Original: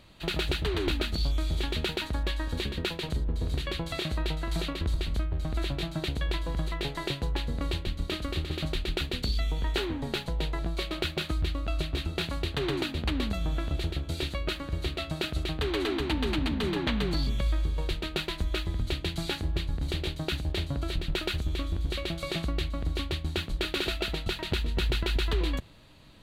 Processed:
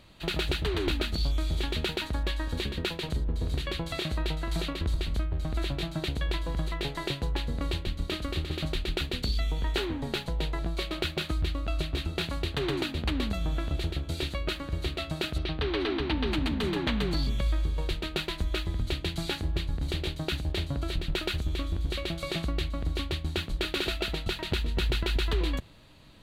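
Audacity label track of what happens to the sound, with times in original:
15.380000	16.320000	Savitzky-Golay smoothing over 15 samples

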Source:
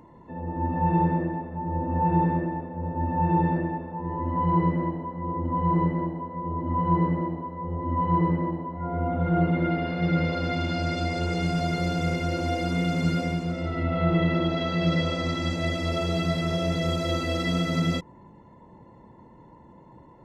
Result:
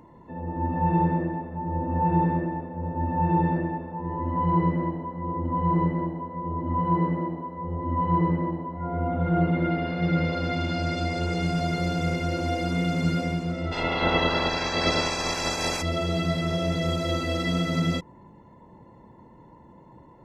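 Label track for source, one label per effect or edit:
6.850000	7.580000	parametric band 64 Hz −12.5 dB 0.89 octaves
13.710000	15.810000	ceiling on every frequency bin ceiling under each frame's peak by 28 dB

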